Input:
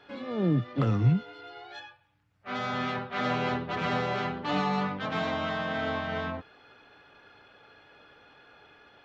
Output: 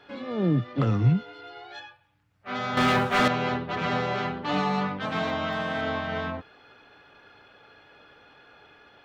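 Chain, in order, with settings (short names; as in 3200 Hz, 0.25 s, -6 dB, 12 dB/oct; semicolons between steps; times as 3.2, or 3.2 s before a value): 2.77–3.28 sample leveller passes 3; 4.51–5.81 GSM buzz -48 dBFS; gain +2 dB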